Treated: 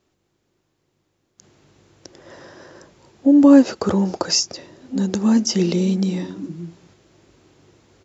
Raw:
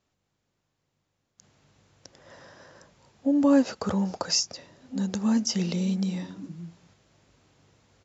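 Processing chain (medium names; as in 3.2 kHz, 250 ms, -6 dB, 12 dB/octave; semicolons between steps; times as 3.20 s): peaking EQ 350 Hz +11 dB 0.49 oct; trim +6 dB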